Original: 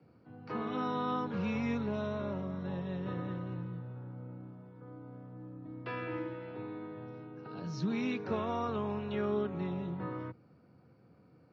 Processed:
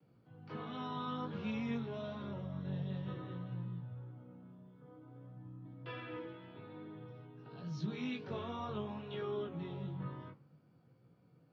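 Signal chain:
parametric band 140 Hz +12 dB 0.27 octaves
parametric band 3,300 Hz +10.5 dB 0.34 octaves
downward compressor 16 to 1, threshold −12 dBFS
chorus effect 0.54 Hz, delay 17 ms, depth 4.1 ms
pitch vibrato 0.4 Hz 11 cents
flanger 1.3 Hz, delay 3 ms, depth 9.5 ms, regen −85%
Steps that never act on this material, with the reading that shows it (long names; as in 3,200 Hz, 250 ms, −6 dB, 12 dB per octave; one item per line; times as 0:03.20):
downward compressor, threshold −12 dBFS: peak of its input −20.0 dBFS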